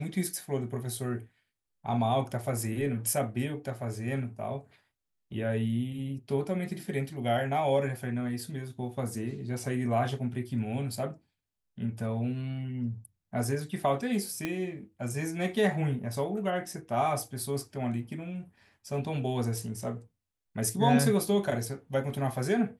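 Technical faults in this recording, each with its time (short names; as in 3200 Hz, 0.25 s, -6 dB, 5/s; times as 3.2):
14.45 pop -17 dBFS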